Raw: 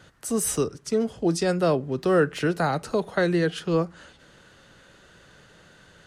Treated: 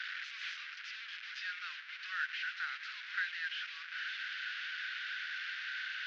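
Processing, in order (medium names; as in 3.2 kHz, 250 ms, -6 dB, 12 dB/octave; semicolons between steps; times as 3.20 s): one-bit delta coder 32 kbps, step -24.5 dBFS; Chebyshev high-pass 1.5 kHz, order 5; distance through air 330 m; trim -2 dB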